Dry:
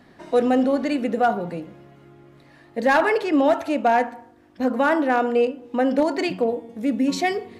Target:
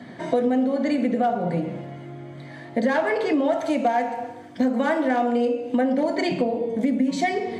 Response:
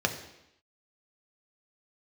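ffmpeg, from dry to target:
-filter_complex "[0:a]asettb=1/sr,asplit=3[a][b][c];[a]atrim=end=3.524[d];[b]atrim=start=3.52:end=5.81,asetpts=PTS-STARTPTS,afade=t=in:d=0.004:c=qsin,afade=t=out:st=2.286:d=0.004:c=qsin,highshelf=f=4.3k:g=8.5[e];[c]atrim=start=5.806[f];[d][e]acrossfade=d=0.004:c1=hsin:c2=qsin[g];[g][f]acrossfade=d=0.004:c1=qsin:c2=hsin[h];[1:a]atrim=start_sample=2205,asetrate=57330,aresample=44100[i];[h][i]afir=irnorm=-1:irlink=0,acompressor=threshold=-22dB:ratio=5,volume=1.5dB"

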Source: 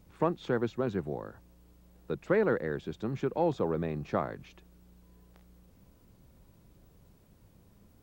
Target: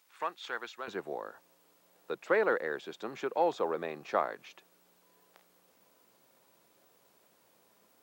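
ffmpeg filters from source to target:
-af "asetnsamples=n=441:p=0,asendcmd='0.88 highpass f 570',highpass=1.3k,volume=4dB"

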